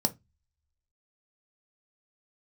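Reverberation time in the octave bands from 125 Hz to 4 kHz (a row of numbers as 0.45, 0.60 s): 0.45, 0.25, 0.20, 0.20, 0.20, 0.20 s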